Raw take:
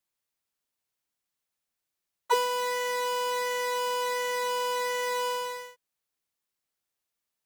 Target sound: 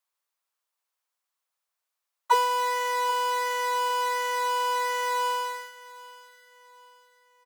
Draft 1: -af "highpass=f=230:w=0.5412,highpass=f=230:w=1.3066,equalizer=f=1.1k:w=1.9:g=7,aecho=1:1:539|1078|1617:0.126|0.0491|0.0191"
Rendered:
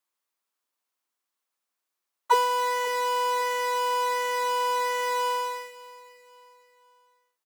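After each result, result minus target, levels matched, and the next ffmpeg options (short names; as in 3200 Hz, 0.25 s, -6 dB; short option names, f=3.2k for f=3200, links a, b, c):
250 Hz band +10.0 dB; echo 0.248 s early
-af "highpass=f=470:w=0.5412,highpass=f=470:w=1.3066,equalizer=f=1.1k:w=1.9:g=7,aecho=1:1:539|1078|1617:0.126|0.0491|0.0191"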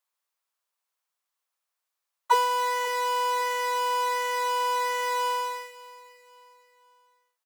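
echo 0.248 s early
-af "highpass=f=470:w=0.5412,highpass=f=470:w=1.3066,equalizer=f=1.1k:w=1.9:g=7,aecho=1:1:787|1574|2361:0.126|0.0491|0.0191"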